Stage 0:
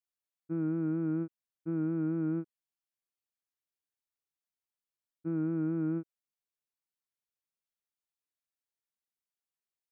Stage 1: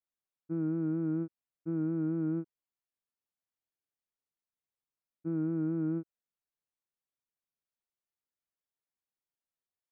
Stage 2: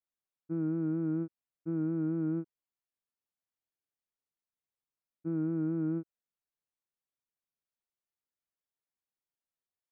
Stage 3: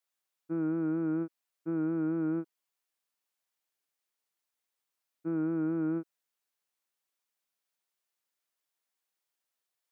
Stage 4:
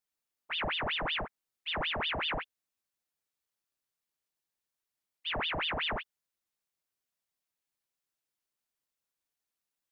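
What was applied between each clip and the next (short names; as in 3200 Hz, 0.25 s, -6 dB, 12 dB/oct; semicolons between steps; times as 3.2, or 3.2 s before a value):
high shelf 2200 Hz -11.5 dB
nothing audible
HPF 620 Hz 6 dB/oct; gain +8.5 dB
ring modulator with a swept carrier 1800 Hz, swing 85%, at 5.3 Hz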